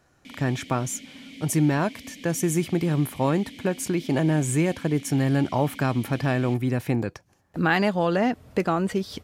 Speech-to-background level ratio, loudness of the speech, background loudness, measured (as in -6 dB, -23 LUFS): 18.5 dB, -25.0 LUFS, -43.5 LUFS